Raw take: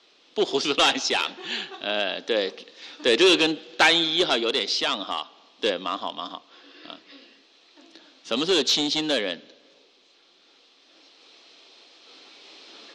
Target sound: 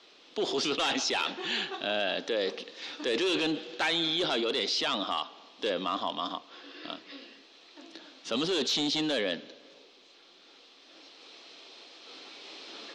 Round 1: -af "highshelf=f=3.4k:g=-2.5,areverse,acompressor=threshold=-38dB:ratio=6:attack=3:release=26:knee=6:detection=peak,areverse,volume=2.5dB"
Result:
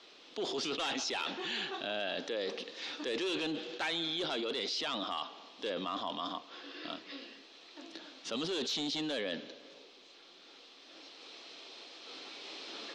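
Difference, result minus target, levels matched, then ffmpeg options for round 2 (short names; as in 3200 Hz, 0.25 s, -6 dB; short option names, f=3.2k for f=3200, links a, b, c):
compressor: peak gain reduction +6.5 dB
-af "highshelf=f=3.4k:g=-2.5,areverse,acompressor=threshold=-30dB:ratio=6:attack=3:release=26:knee=6:detection=peak,areverse,volume=2.5dB"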